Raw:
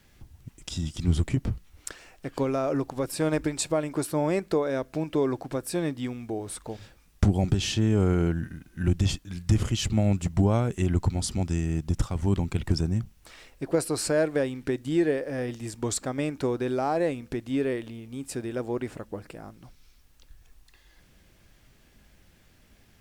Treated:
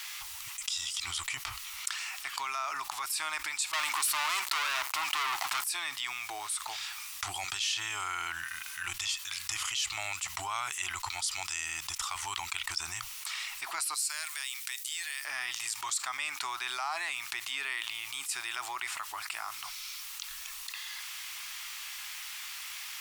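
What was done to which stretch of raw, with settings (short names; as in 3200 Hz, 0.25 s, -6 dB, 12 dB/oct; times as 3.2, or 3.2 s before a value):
3.73–5.64 sample leveller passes 5
13.94–15.25 pre-emphasis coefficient 0.97
whole clip: inverse Chebyshev high-pass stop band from 550 Hz, stop band 40 dB; bell 1600 Hz -9 dB 0.37 oct; fast leveller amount 70%; gain -8.5 dB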